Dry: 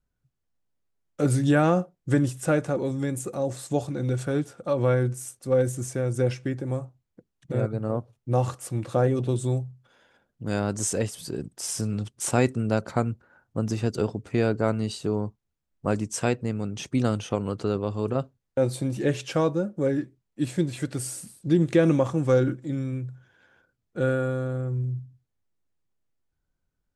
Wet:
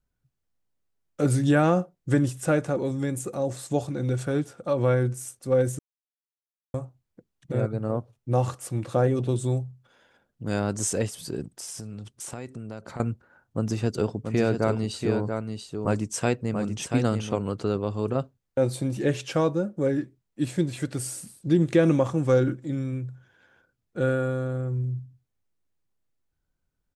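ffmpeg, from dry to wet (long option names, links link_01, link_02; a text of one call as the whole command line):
ffmpeg -i in.wav -filter_complex "[0:a]asettb=1/sr,asplit=3[link_01][link_02][link_03];[link_01]atrim=end=11.444[link_04];[link_02]atrim=start=11.44:end=13,asetpts=PTS-STARTPTS,afade=type=in:duration=0.004:curve=qsin,afade=type=out:start_time=1.556:duration=0.004:curve=qsin,acompressor=threshold=-35dB:ratio=4:attack=3.2:release=140:knee=1:detection=peak[link_05];[link_03]atrim=start=12.996[link_06];[link_04][link_05]acrossfade=duration=0.004:curve1=hsin:curve2=qsin[link_07];[link_07][link_06]acrossfade=duration=0.004:curve1=qsin:curve2=hsin,asplit=3[link_08][link_09][link_10];[link_08]afade=type=out:start_time=14.09:duration=0.02[link_11];[link_09]aecho=1:1:684:0.501,afade=type=in:start_time=14.09:duration=0.02,afade=type=out:start_time=17.39:duration=0.02[link_12];[link_10]afade=type=in:start_time=17.39:duration=0.02[link_13];[link_11][link_12][link_13]amix=inputs=3:normalize=0,asplit=3[link_14][link_15][link_16];[link_14]atrim=end=5.79,asetpts=PTS-STARTPTS,afade=type=out:start_time=5.786:duration=0.004:curve=hsin[link_17];[link_15]atrim=start=5.79:end=6.74,asetpts=PTS-STARTPTS,volume=0[link_18];[link_16]atrim=start=6.74,asetpts=PTS-STARTPTS,afade=type=in:duration=0.004:curve=hsin[link_19];[link_17][link_18][link_19]concat=n=3:v=0:a=1" out.wav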